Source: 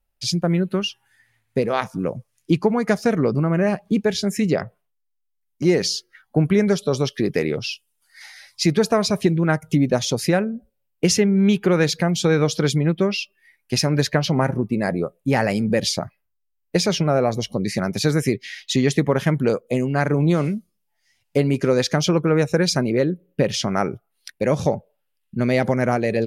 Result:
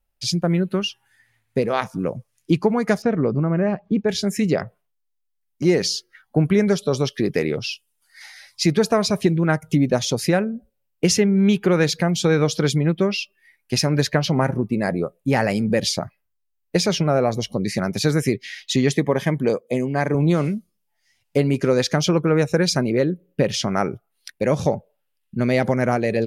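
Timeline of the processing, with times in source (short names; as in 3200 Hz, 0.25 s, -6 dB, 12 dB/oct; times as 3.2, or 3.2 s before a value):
3.02–4.09 tape spacing loss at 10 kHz 27 dB
18.94–20.15 notch comb 1400 Hz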